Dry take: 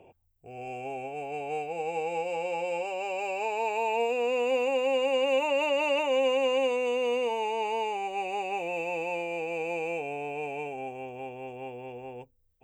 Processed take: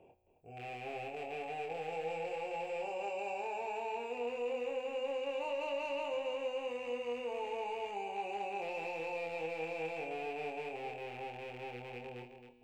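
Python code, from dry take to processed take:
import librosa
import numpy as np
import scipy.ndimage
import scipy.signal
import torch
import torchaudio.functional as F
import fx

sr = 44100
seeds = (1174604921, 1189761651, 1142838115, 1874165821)

p1 = fx.rattle_buzz(x, sr, strikes_db=-47.0, level_db=-30.0)
p2 = fx.high_shelf(p1, sr, hz=3400.0, db=-5.0)
p3 = fx.over_compress(p2, sr, threshold_db=-33.0, ratio=-1.0)
p4 = p2 + F.gain(torch.from_numpy(p3), -0.5).numpy()
p5 = fx.comb_fb(p4, sr, f0_hz=61.0, decay_s=1.9, harmonics='all', damping=0.0, mix_pct=60)
p6 = 10.0 ** (-23.5 / 20.0) * np.tanh(p5 / 10.0 ** (-23.5 / 20.0))
p7 = fx.doubler(p6, sr, ms=25.0, db=-3.5)
p8 = p7 + 10.0 ** (-9.0 / 20.0) * np.pad(p7, (int(267 * sr / 1000.0), 0))[:len(p7)]
y = F.gain(torch.from_numpy(p8), -8.0).numpy()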